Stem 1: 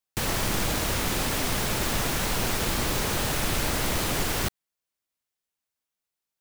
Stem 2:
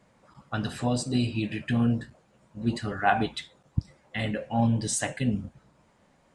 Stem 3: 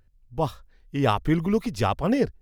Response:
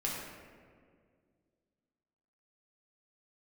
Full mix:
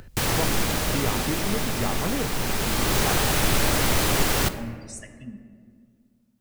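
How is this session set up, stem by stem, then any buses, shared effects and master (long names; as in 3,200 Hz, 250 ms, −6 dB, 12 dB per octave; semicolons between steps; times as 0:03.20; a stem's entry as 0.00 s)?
+2.5 dB, 0.00 s, send −11 dB, automatic ducking −11 dB, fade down 1.80 s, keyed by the third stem
−10.0 dB, 0.00 s, send −8 dB, spectral dynamics exaggerated over time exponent 3
−8.0 dB, 0.00 s, no send, multiband upward and downward compressor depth 100%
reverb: on, RT60 2.0 s, pre-delay 3 ms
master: no processing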